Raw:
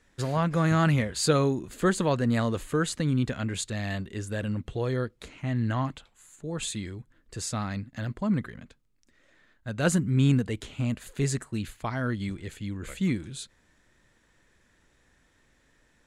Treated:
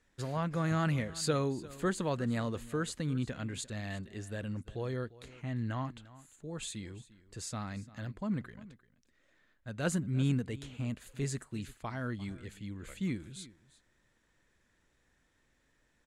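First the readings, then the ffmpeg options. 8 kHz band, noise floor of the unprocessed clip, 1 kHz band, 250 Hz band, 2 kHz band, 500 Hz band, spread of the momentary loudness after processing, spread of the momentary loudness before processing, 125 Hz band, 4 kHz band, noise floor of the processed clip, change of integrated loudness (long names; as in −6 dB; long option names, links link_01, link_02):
−8.0 dB, −66 dBFS, −8.0 dB, −8.0 dB, −8.0 dB, −8.0 dB, 15 LU, 13 LU, −8.0 dB, −8.0 dB, −73 dBFS, −8.0 dB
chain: -af "aecho=1:1:348:0.112,volume=-8dB"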